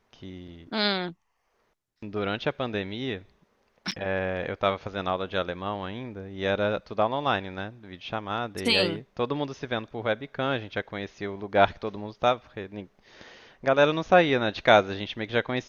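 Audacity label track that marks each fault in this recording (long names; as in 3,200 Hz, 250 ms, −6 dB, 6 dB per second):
3.910000	3.920000	drop-out 6.8 ms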